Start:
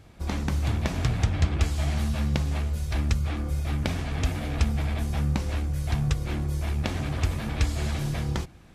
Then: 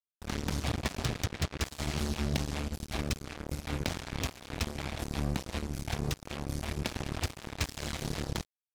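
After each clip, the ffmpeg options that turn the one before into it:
-filter_complex "[0:a]adynamicequalizer=threshold=0.00355:dfrequency=5000:dqfactor=0.87:tfrequency=5000:tqfactor=0.87:attack=5:release=100:ratio=0.375:range=2.5:mode=boostabove:tftype=bell,acrossover=split=120|930|2800[a][b][c][d];[a]alimiter=limit=-24dB:level=0:latency=1:release=456[e];[e][b][c][d]amix=inputs=4:normalize=0,acrusher=bits=3:mix=0:aa=0.5,volume=-5.5dB"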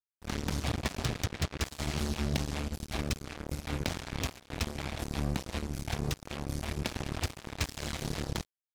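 -af "agate=range=-12dB:threshold=-44dB:ratio=16:detection=peak"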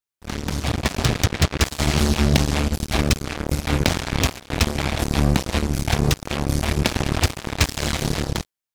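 -af "dynaudnorm=f=190:g=9:m=8dB,volume=6dB"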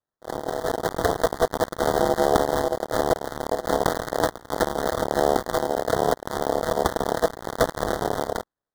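-af "acrusher=samples=19:mix=1:aa=0.000001,aeval=exprs='val(0)*sin(2*PI*570*n/s)':c=same,asuperstop=centerf=2500:order=8:qfactor=2.1"

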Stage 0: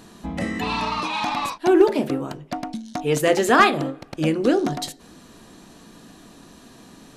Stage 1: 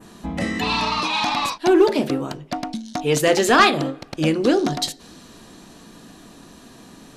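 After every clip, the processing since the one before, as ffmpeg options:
-af "acontrast=48,adynamicequalizer=threshold=0.0112:dfrequency=4500:dqfactor=0.91:tfrequency=4500:tqfactor=0.91:attack=5:release=100:ratio=0.375:range=3:mode=boostabove:tftype=bell,volume=-4dB"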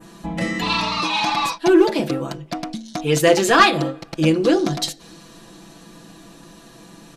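-af "aecho=1:1:6:0.72,volume=-1dB"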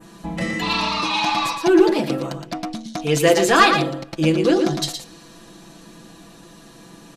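-af "aecho=1:1:116:0.447,volume=-1dB"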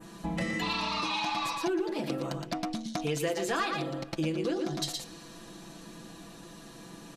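-af "acompressor=threshold=-25dB:ratio=6,volume=-3.5dB"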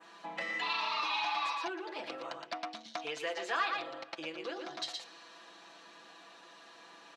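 -af "highpass=760,lowpass=3.8k"

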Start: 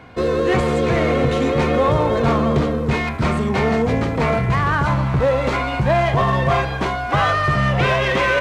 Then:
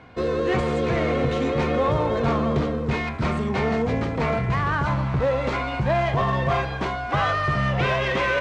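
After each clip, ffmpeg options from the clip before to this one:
-af "lowpass=7k,volume=-5dB"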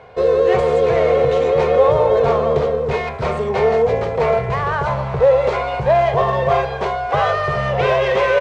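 -af "firequalizer=gain_entry='entry(140,0);entry(290,-12);entry(420,12);entry(1300,2)':delay=0.05:min_phase=1"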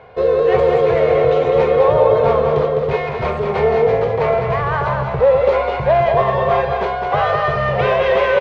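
-af "lowpass=4.1k,aecho=1:1:206:0.531"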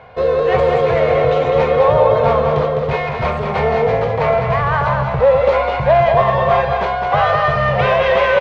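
-af "equalizer=f=400:t=o:w=0.49:g=-9,volume=3dB"

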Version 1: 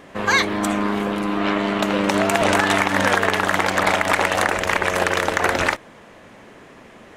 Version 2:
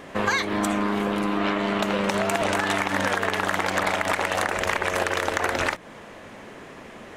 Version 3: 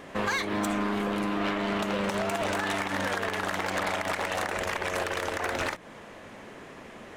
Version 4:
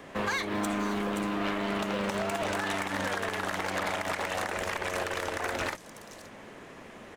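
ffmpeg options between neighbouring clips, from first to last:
-af "bandreject=f=60:t=h:w=6,bandreject=f=120:t=h:w=6,bandreject=f=180:t=h:w=6,bandreject=f=240:t=h:w=6,bandreject=f=300:t=h:w=6,acompressor=threshold=-23dB:ratio=6,volume=2.5dB"
-filter_complex "[0:a]asplit=2[a][b];[b]alimiter=limit=-14.5dB:level=0:latency=1:release=152,volume=-1.5dB[c];[a][c]amix=inputs=2:normalize=0,asoftclip=type=hard:threshold=-14.5dB,volume=-8.5dB"
-filter_complex "[0:a]acrossover=split=170|460|4300[a][b][c][d];[a]acrusher=bits=2:mode=log:mix=0:aa=0.000001[e];[d]aecho=1:1:524:0.531[f];[e][b][c][f]amix=inputs=4:normalize=0,volume=-2dB"

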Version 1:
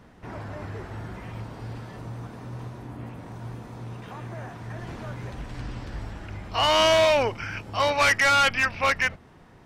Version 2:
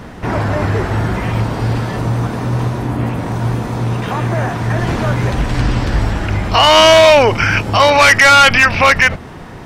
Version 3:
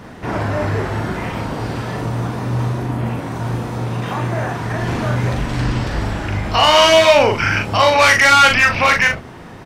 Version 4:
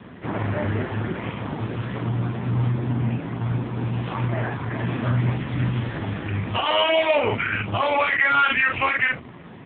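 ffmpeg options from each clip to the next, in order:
-af "alimiter=level_in=21dB:limit=-1dB:release=50:level=0:latency=1,volume=-1dB"
-filter_complex "[0:a]lowshelf=f=65:g=-7.5,asplit=2[a][b];[b]aecho=0:1:40|65:0.631|0.178[c];[a][c]amix=inputs=2:normalize=0,volume=-4.5dB"
-af "equalizer=f=640:w=0.55:g=-4,alimiter=limit=-9.5dB:level=0:latency=1:release=36" -ar 8000 -c:a libopencore_amrnb -b:a 5150

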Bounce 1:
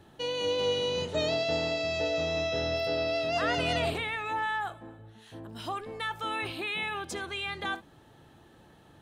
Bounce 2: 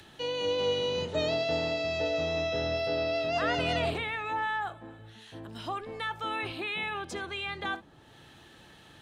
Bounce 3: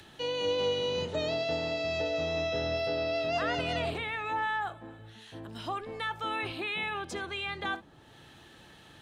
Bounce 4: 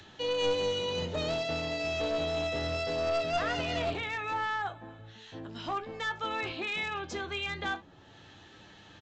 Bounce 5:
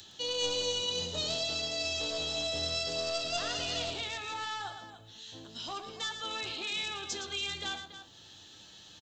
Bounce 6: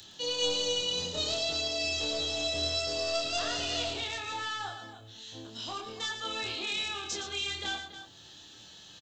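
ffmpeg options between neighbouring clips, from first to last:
-filter_complex "[0:a]highshelf=f=8.5k:g=-11.5,acrossover=split=140|430|1800[a][b][c][d];[d]acompressor=mode=upward:threshold=-46dB:ratio=2.5[e];[a][b][c][e]amix=inputs=4:normalize=0"
-af "alimiter=limit=-21dB:level=0:latency=1:release=435"
-af "flanger=delay=9.9:depth=3.6:regen=49:speed=0.23:shape=sinusoidal,aresample=16000,aeval=exprs='clip(val(0),-1,0.0211)':c=same,aresample=44100,volume=4.5dB"
-filter_complex "[0:a]aexciter=amount=4.7:drive=6.6:freq=3.1k,asplit=2[a][b];[b]aecho=0:1:113.7|282.8:0.355|0.251[c];[a][c]amix=inputs=2:normalize=0,volume=-7dB"
-filter_complex "[0:a]asplit=2[a][b];[b]adelay=27,volume=-3dB[c];[a][c]amix=inputs=2:normalize=0"

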